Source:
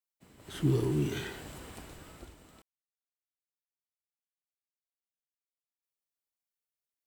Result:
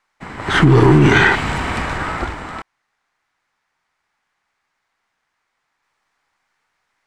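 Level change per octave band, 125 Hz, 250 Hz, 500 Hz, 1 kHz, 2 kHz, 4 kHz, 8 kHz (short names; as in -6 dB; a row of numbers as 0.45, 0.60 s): +18.5, +18.5, +19.0, +30.5, +31.0, +21.5, +14.0 dB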